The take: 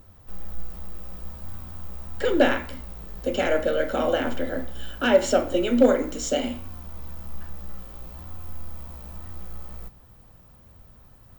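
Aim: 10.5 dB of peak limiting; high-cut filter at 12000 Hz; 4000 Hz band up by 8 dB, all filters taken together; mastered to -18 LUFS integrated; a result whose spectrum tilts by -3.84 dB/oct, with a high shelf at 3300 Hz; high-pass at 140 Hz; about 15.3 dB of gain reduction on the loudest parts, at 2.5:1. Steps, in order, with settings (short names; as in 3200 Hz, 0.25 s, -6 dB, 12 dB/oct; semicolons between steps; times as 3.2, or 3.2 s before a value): HPF 140 Hz; LPF 12000 Hz; high shelf 3300 Hz +7 dB; bell 4000 Hz +7 dB; compressor 2.5:1, threshold -36 dBFS; gain +23.5 dB; limiter -6 dBFS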